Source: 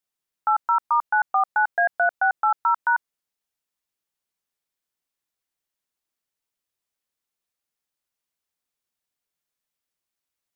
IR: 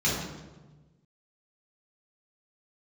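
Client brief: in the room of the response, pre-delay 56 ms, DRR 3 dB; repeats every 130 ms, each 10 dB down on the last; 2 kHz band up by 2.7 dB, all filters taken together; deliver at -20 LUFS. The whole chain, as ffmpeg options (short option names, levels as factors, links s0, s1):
-filter_complex "[0:a]equalizer=f=2000:t=o:g=4.5,aecho=1:1:130|260|390|520:0.316|0.101|0.0324|0.0104,asplit=2[s0][s1];[1:a]atrim=start_sample=2205,adelay=56[s2];[s1][s2]afir=irnorm=-1:irlink=0,volume=0.168[s3];[s0][s3]amix=inputs=2:normalize=0,volume=0.891"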